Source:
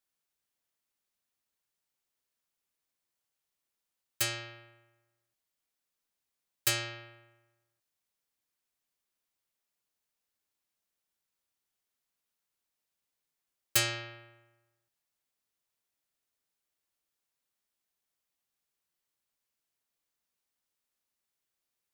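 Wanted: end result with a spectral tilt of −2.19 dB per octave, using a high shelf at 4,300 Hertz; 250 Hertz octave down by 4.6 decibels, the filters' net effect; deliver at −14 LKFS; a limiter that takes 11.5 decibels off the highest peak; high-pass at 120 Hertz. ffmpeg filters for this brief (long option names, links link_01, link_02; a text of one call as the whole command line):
ffmpeg -i in.wav -af "highpass=120,equalizer=frequency=250:width_type=o:gain=-8.5,highshelf=frequency=4300:gain=-4.5,volume=26dB,alimiter=limit=-1dB:level=0:latency=1" out.wav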